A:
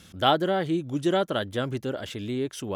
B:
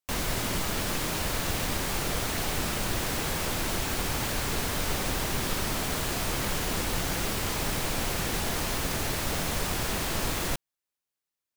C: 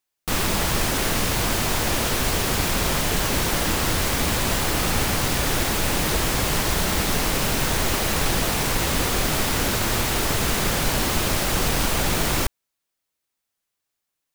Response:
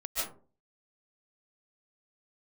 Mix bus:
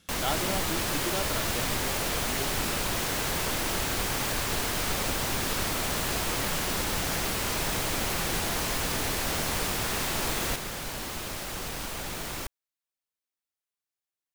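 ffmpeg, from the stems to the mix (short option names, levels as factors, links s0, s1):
-filter_complex "[0:a]volume=0.335[s0];[1:a]volume=1.06[s1];[2:a]volume=0.251[s2];[s0][s1][s2]amix=inputs=3:normalize=0,lowshelf=f=340:g=-4"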